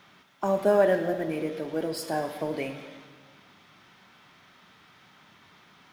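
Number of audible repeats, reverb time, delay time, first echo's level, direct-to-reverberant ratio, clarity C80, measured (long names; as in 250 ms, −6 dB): no echo audible, 1.4 s, no echo audible, no echo audible, 7.0 dB, 10.0 dB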